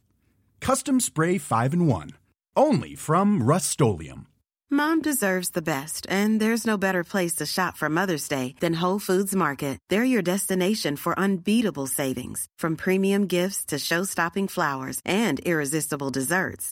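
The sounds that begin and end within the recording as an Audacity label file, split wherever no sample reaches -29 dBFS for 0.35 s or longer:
0.620000	2.100000	sound
2.570000	4.120000	sound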